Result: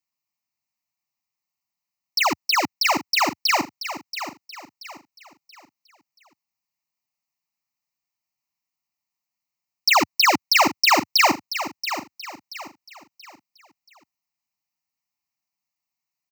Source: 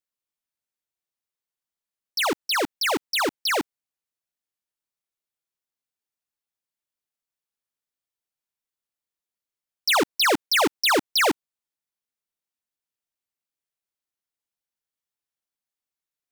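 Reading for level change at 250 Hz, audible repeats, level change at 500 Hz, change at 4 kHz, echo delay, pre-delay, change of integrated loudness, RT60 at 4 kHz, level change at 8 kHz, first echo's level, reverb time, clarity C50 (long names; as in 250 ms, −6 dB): +1.0 dB, 3, −2.5 dB, +3.0 dB, 680 ms, no reverb audible, +2.5 dB, no reverb audible, +3.5 dB, −11.0 dB, no reverb audible, no reverb audible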